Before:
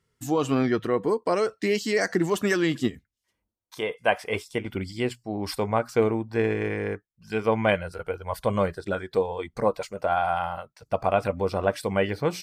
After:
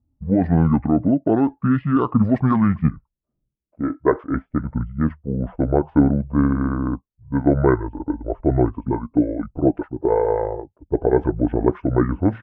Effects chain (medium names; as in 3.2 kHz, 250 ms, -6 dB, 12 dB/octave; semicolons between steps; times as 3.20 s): distance through air 500 m; pitch shift -8 st; level-controlled noise filter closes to 320 Hz, open at -18.5 dBFS; trim +8 dB